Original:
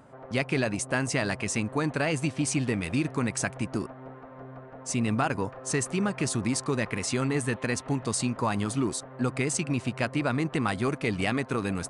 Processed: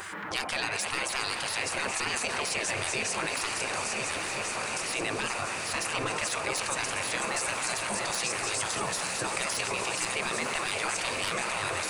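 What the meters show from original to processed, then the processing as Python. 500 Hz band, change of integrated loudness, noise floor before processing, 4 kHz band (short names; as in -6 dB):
-4.0 dB, -1.0 dB, -46 dBFS, +6.5 dB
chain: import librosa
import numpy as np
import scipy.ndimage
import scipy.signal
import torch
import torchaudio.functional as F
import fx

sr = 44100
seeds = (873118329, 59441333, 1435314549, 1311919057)

p1 = fx.reverse_delay_fb(x, sr, ms=698, feedback_pct=53, wet_db=-8.0)
p2 = scipy.signal.sosfilt(scipy.signal.butter(4, 130.0, 'highpass', fs=sr, output='sos'), p1)
p3 = fx.high_shelf(p2, sr, hz=5400.0, db=2.5)
p4 = fx.level_steps(p3, sr, step_db=13)
p5 = p3 + F.gain(torch.from_numpy(p4), -2.5).numpy()
p6 = 10.0 ** (-11.5 / 20.0) * np.tanh(p5 / 10.0 ** (-11.5 / 20.0))
p7 = fx.echo_stepped(p6, sr, ms=100, hz=400.0, octaves=1.4, feedback_pct=70, wet_db=-11.0)
p8 = fx.spec_gate(p7, sr, threshold_db=-15, keep='weak')
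p9 = p8 + fx.echo_diffused(p8, sr, ms=929, feedback_pct=74, wet_db=-11, dry=0)
y = fx.env_flatten(p9, sr, amount_pct=70)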